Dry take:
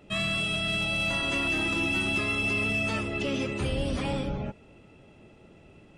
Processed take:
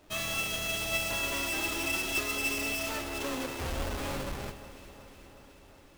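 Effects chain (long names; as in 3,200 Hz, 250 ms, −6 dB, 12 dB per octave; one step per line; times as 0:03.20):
each half-wave held at its own peak
parametric band 180 Hz −10.5 dB 1.1 octaves
hum removal 51.88 Hz, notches 4
flanger 0.35 Hz, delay 3.2 ms, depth 2 ms, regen +68%
delay that swaps between a low-pass and a high-pass 183 ms, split 1,900 Hz, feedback 81%, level −13 dB
expander for the loud parts 2.5 to 1, over −29 dBFS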